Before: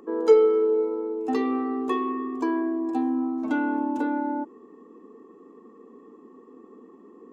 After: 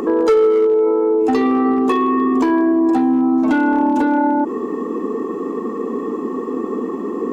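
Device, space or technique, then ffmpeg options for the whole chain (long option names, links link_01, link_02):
loud club master: -filter_complex "[0:a]asplit=3[link_01][link_02][link_03];[link_01]afade=type=out:start_time=0.66:duration=0.02[link_04];[link_02]bass=frequency=250:gain=-13,treble=frequency=4000:gain=-13,afade=type=in:start_time=0.66:duration=0.02,afade=type=out:start_time=1.21:duration=0.02[link_05];[link_03]afade=type=in:start_time=1.21:duration=0.02[link_06];[link_04][link_05][link_06]amix=inputs=3:normalize=0,acompressor=threshold=-29dB:ratio=2,asoftclip=type=hard:threshold=-23dB,alimiter=level_in=34.5dB:limit=-1dB:release=50:level=0:latency=1,volume=-8.5dB"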